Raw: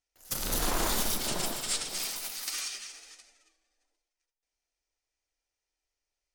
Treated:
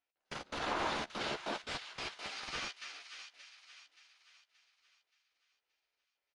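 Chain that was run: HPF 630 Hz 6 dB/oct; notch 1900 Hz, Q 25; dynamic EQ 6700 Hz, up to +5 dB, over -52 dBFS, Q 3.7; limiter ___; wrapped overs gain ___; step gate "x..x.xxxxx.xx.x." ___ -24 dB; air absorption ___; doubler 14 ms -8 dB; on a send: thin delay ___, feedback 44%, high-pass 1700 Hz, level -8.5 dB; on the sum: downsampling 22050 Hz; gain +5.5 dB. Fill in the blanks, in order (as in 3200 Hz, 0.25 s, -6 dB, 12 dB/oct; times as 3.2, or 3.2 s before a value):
-23.5 dBFS, 25.5 dB, 144 bpm, 330 m, 0.576 s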